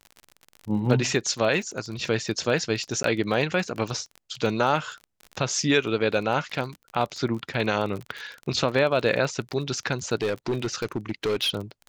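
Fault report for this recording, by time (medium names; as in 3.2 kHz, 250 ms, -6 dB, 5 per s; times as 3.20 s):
crackle 26 per s -31 dBFS
3.03–3.04 s: dropout 13 ms
10.21–11.56 s: clipped -21 dBFS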